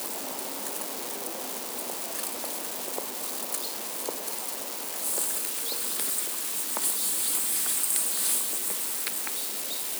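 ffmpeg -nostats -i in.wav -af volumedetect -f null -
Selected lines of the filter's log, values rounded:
mean_volume: -30.5 dB
max_volume: -10.9 dB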